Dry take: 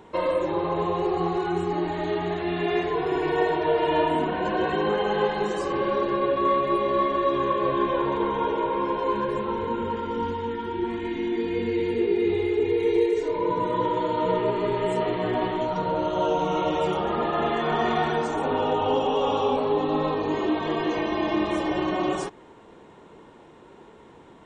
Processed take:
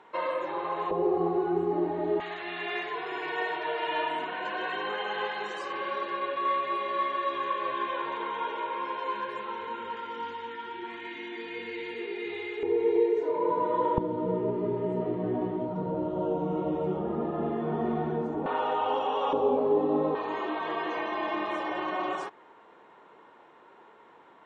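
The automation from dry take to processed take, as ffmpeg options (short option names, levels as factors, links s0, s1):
-af "asetnsamples=n=441:p=0,asendcmd='0.91 bandpass f 430;2.2 bandpass f 2100;12.63 bandpass f 690;13.98 bandpass f 220;18.46 bandpass f 1300;19.33 bandpass f 400;20.15 bandpass f 1300',bandpass=f=1500:t=q:w=0.88:csg=0"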